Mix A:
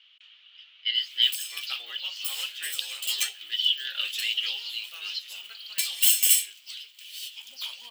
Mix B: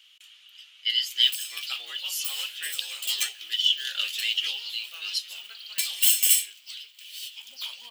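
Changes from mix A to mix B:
speech: remove low-pass 4.1 kHz 24 dB/octave; reverb: on, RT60 1.5 s

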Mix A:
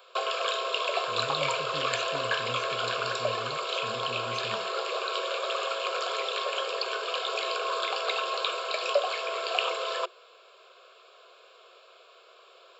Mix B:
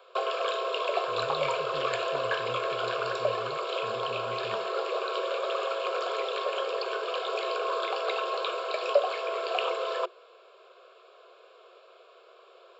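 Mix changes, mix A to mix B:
speech -12.0 dB; master: add tilt EQ -3 dB/octave

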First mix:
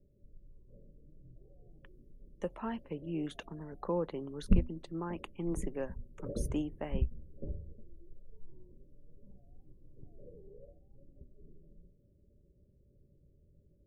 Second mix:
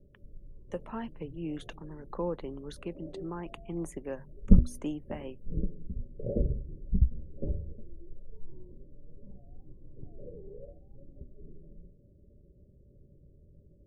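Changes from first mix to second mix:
speech: entry -1.70 s; background +7.5 dB

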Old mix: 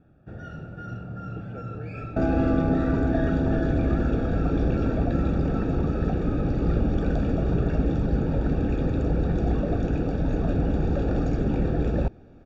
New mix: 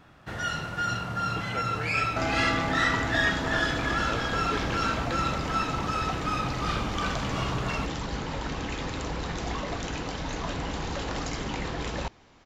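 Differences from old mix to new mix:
second sound -11.0 dB; master: remove boxcar filter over 43 samples

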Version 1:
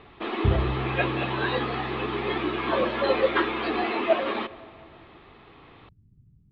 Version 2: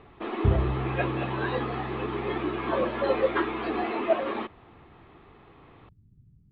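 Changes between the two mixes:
speech: add low-pass 1.6 kHz 6 dB/octave; reverb: off

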